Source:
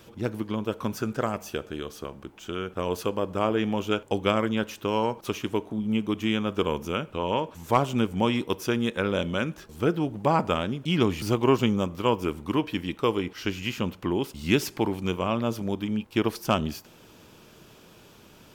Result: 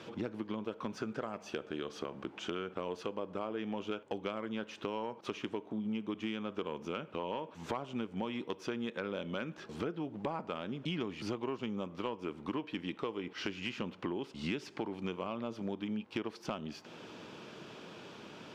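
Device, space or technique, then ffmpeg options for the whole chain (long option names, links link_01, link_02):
AM radio: -af "highpass=170,lowpass=4200,acompressor=threshold=-38dB:ratio=8,asoftclip=type=tanh:threshold=-26dB,volume=4dB"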